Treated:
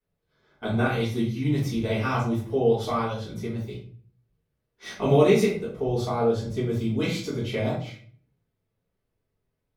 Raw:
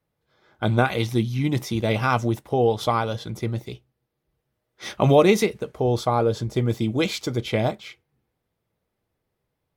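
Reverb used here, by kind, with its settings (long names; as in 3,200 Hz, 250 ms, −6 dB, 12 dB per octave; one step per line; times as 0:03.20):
rectangular room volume 46 cubic metres, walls mixed, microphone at 1.9 metres
level −14 dB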